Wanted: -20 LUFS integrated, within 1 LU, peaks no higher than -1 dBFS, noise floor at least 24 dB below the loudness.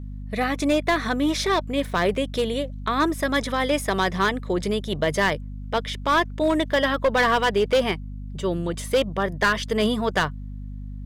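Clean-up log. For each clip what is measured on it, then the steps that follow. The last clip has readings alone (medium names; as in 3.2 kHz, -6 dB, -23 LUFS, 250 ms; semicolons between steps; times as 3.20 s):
clipped samples 1.3%; clipping level -14.0 dBFS; hum 50 Hz; highest harmonic 250 Hz; hum level -32 dBFS; loudness -23.5 LUFS; peak level -14.0 dBFS; loudness target -20.0 LUFS
-> clip repair -14 dBFS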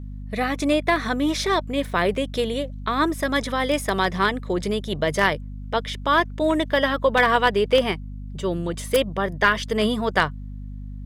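clipped samples 0.0%; hum 50 Hz; highest harmonic 250 Hz; hum level -31 dBFS
-> de-hum 50 Hz, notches 5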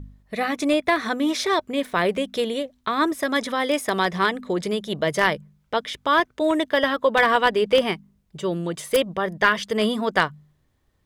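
hum not found; loudness -22.5 LUFS; peak level -5.0 dBFS; loudness target -20.0 LUFS
-> trim +2.5 dB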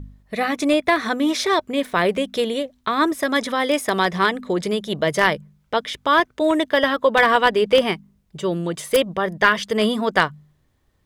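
loudness -20.0 LUFS; peak level -2.5 dBFS; noise floor -64 dBFS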